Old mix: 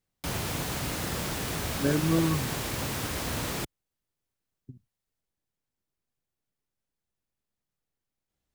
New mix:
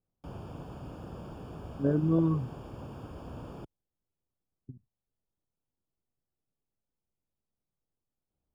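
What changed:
background −8.5 dB
master: add moving average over 22 samples

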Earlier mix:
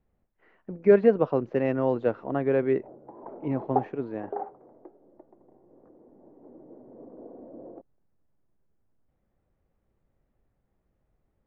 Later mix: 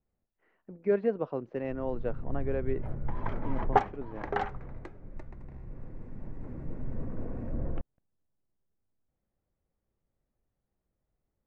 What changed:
speech −9.0 dB
background: remove Chebyshev band-pass filter 320–760 Hz, order 2

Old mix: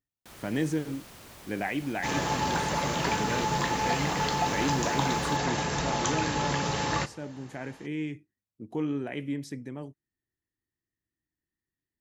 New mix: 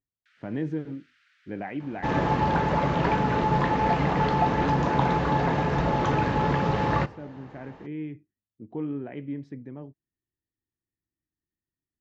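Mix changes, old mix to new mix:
first sound: add Butterworth high-pass 1,400 Hz 72 dB per octave
second sound +8.0 dB
master: add head-to-tape spacing loss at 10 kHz 40 dB

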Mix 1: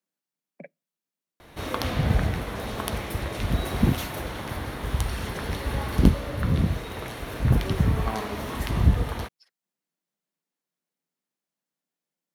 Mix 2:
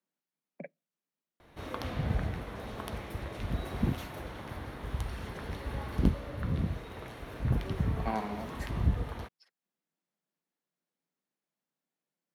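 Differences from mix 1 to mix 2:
background −8.5 dB
master: add high-shelf EQ 3,800 Hz −7.5 dB

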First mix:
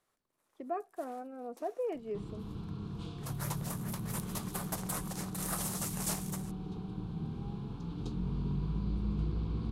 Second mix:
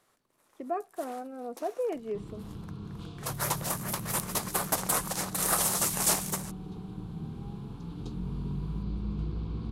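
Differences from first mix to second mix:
speech +4.0 dB
first sound +10.5 dB

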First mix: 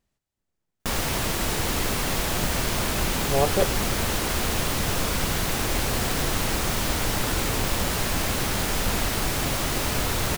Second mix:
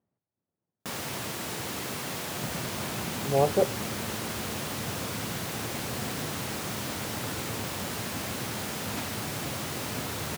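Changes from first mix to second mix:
speech: add low-pass filter 1,000 Hz
first sound −8.0 dB
master: add high-pass filter 100 Hz 24 dB per octave

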